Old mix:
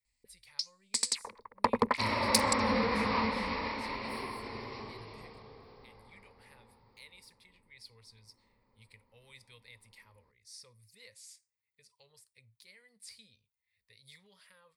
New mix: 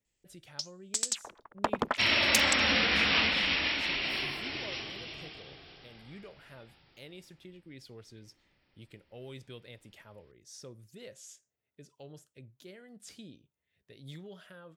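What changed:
speech: remove amplifier tone stack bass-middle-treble 10-0-10; second sound: add resonant high shelf 1.6 kHz +12 dB, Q 1.5; master: remove rippled EQ curve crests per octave 0.92, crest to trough 12 dB

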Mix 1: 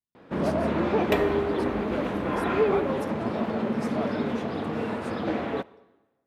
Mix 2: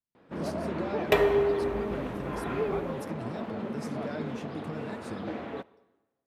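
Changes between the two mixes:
first sound -8.0 dB; second sound: send on

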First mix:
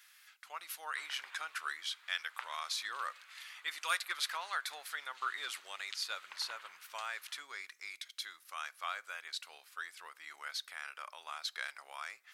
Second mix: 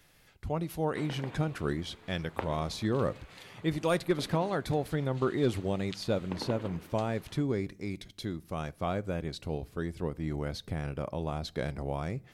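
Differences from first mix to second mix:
speech -3.5 dB; master: remove Chebyshev high-pass 1.3 kHz, order 3

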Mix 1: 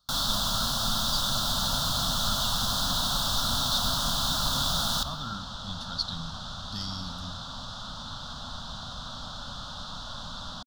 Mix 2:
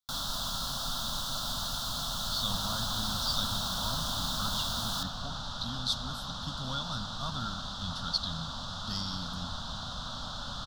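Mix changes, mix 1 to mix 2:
speech: entry +2.15 s; first sound -6.5 dB; second sound: entry +1.00 s

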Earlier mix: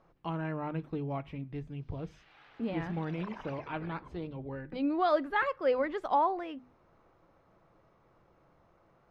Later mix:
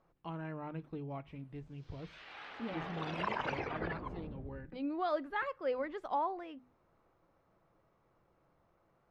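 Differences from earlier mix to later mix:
speech -7.0 dB; background +10.0 dB

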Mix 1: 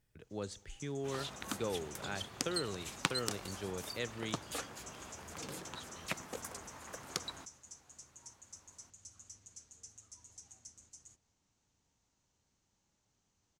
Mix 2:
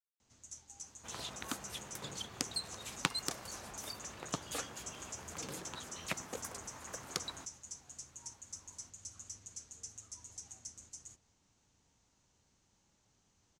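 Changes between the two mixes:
speech: muted; first sound +5.5 dB; reverb: off

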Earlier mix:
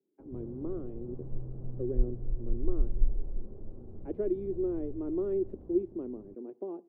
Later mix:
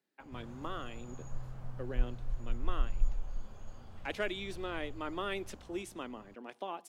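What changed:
background -3.5 dB; master: remove resonant low-pass 370 Hz, resonance Q 4

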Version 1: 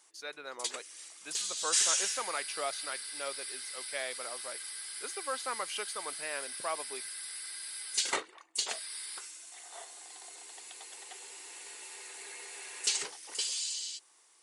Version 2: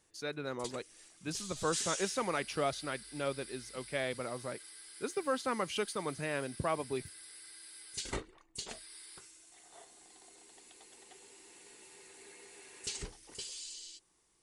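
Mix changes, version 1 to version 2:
background -10.0 dB; master: remove high-pass 660 Hz 12 dB/octave

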